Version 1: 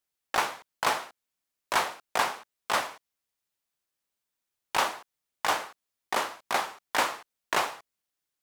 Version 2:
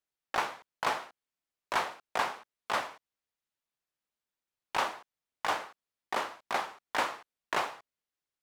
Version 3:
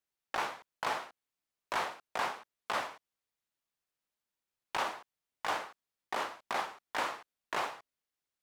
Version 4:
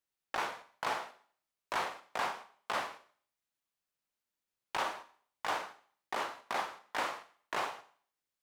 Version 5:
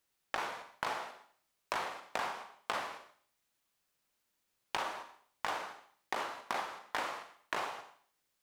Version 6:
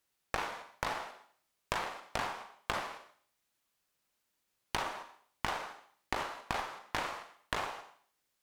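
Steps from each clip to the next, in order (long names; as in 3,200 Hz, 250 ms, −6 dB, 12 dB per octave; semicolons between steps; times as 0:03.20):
high-shelf EQ 6,000 Hz −10 dB; level −3.5 dB
brickwall limiter −22 dBFS, peak gain reduction 6 dB
four-comb reverb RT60 0.5 s, combs from 33 ms, DRR 12 dB; level −1 dB
downward compressor 6 to 1, threshold −43 dBFS, peak gain reduction 13 dB; level +9 dB
harmonic generator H 4 −10 dB, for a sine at −15.5 dBFS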